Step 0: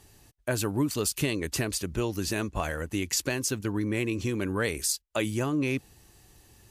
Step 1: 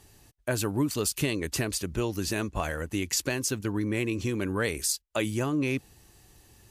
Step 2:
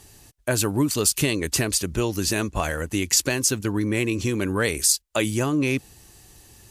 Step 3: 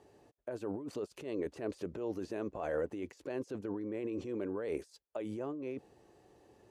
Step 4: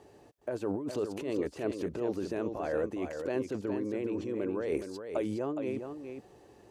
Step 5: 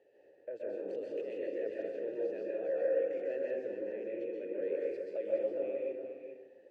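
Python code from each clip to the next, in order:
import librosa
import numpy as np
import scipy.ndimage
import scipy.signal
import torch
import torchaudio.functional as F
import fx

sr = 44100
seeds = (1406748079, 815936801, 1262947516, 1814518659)

y1 = x
y2 = fx.peak_eq(y1, sr, hz=8200.0, db=4.5, octaves=1.9)
y2 = y2 * librosa.db_to_amplitude(5.0)
y3 = fx.over_compress(y2, sr, threshold_db=-28.0, ratio=-1.0)
y3 = fx.bandpass_q(y3, sr, hz=500.0, q=1.6)
y3 = y3 * librosa.db_to_amplitude(-4.0)
y4 = fx.rider(y3, sr, range_db=10, speed_s=0.5)
y4 = y4 + 10.0 ** (-7.5 / 20.0) * np.pad(y4, (int(415 * sr / 1000.0), 0))[:len(y4)]
y4 = y4 * librosa.db_to_amplitude(5.0)
y5 = fx.vowel_filter(y4, sr, vowel='e')
y5 = fx.rev_plate(y5, sr, seeds[0], rt60_s=1.1, hf_ratio=0.45, predelay_ms=115, drr_db=-4.0)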